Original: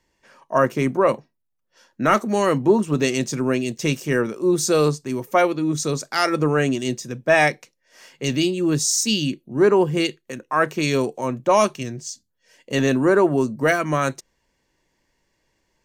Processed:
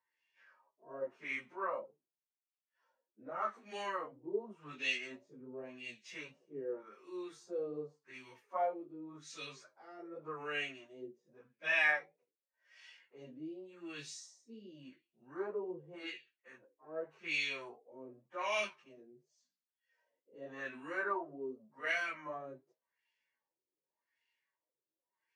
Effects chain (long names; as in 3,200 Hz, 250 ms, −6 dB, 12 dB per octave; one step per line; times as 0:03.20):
first difference
flanger 1.4 Hz, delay 4.4 ms, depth 6 ms, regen −65%
auto-filter low-pass sine 1.4 Hz 380–2,800 Hz
time stretch by phase vocoder 1.6×
harmonic and percussive parts rebalanced percussive −6 dB
level +4.5 dB